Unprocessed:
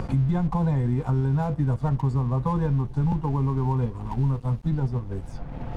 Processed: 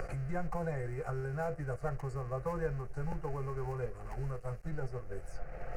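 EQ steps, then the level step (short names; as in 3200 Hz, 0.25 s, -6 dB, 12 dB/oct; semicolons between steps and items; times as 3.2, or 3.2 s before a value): bell 95 Hz -14.5 dB 2.7 oct; fixed phaser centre 950 Hz, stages 6; 0.0 dB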